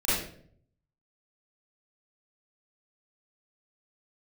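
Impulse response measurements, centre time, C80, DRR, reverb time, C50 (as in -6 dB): 71 ms, 3.0 dB, -12.5 dB, 0.60 s, -2.5 dB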